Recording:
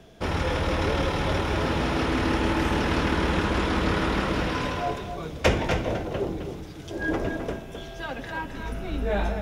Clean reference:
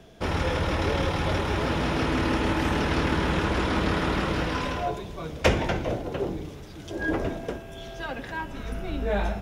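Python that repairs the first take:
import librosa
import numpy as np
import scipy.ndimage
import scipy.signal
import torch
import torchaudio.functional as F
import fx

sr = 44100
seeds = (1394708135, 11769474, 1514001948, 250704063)

y = fx.fix_declip(x, sr, threshold_db=-9.5)
y = fx.fix_echo_inverse(y, sr, delay_ms=261, level_db=-8.0)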